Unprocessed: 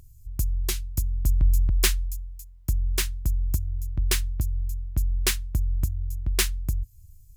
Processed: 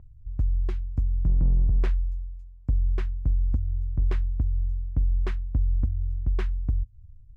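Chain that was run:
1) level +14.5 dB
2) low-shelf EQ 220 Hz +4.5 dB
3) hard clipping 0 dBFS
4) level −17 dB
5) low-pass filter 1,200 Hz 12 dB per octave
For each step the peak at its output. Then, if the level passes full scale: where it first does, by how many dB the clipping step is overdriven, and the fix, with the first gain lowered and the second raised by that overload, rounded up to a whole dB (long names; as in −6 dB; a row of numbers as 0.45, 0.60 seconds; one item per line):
+7.0, +9.0, 0.0, −17.0, −17.0 dBFS
step 1, 9.0 dB
step 1 +5.5 dB, step 4 −8 dB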